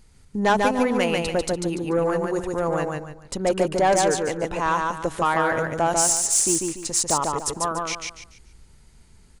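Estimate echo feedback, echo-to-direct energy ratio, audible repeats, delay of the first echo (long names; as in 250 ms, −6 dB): 31%, −2.5 dB, 4, 145 ms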